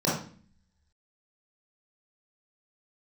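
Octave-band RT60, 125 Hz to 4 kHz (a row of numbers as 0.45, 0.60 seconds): 0.75, 0.80, 0.45, 0.40, 0.45, 0.40 seconds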